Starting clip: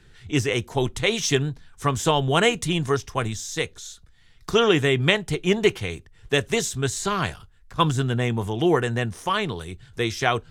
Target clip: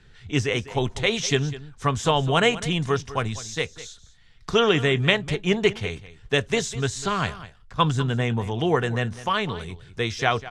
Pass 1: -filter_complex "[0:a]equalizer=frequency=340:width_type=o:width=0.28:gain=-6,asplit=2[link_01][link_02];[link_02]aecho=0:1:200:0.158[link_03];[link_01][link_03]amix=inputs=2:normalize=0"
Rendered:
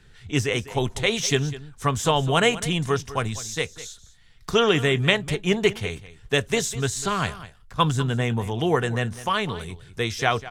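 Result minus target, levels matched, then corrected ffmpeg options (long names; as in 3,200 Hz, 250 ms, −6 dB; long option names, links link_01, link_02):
8,000 Hz band +3.5 dB
-filter_complex "[0:a]lowpass=6500,equalizer=frequency=340:width_type=o:width=0.28:gain=-6,asplit=2[link_01][link_02];[link_02]aecho=0:1:200:0.158[link_03];[link_01][link_03]amix=inputs=2:normalize=0"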